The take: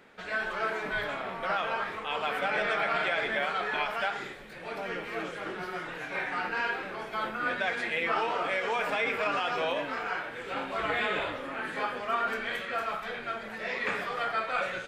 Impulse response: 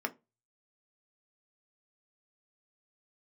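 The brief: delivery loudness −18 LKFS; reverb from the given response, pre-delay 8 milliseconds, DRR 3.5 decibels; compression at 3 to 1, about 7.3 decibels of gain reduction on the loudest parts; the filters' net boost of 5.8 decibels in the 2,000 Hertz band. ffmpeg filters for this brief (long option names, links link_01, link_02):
-filter_complex "[0:a]equalizer=frequency=2000:width_type=o:gain=7.5,acompressor=threshold=-31dB:ratio=3,asplit=2[link_01][link_02];[1:a]atrim=start_sample=2205,adelay=8[link_03];[link_02][link_03]afir=irnorm=-1:irlink=0,volume=-8dB[link_04];[link_01][link_04]amix=inputs=2:normalize=0,volume=12.5dB"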